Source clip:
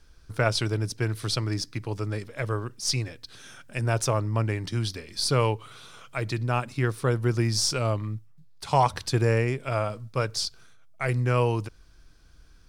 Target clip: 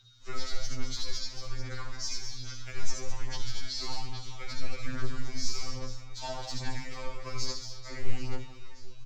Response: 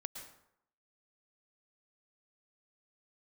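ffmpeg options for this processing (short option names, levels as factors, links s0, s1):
-filter_complex "[0:a]bass=f=250:g=1,treble=f=4000:g=11,acompressor=threshold=0.0562:ratio=5,aresample=16000,acrusher=bits=5:mode=log:mix=0:aa=0.000001,aresample=44100,aecho=1:1:120|312|619.2|1111|1897:0.631|0.398|0.251|0.158|0.1,atempo=1.4,acrossover=split=200|1100[s0][s1][s2];[s1]aeval=exprs='max(val(0),0)':c=same[s3];[s0][s3][s2]amix=inputs=3:normalize=0,aeval=exprs='val(0)+0.00562*sin(2*PI*3900*n/s)':c=same,afreqshift=-120,asplit=2[s4][s5];[s5]adelay=31,volume=0.251[s6];[s4][s6]amix=inputs=2:normalize=0[s7];[1:a]atrim=start_sample=2205,asetrate=88200,aresample=44100[s8];[s7][s8]afir=irnorm=-1:irlink=0,aphaser=in_gain=1:out_gain=1:delay=3.3:decay=0.57:speed=1.2:type=sinusoidal,afftfilt=real='re*2.45*eq(mod(b,6),0)':imag='im*2.45*eq(mod(b,6),0)':win_size=2048:overlap=0.75,volume=1.19"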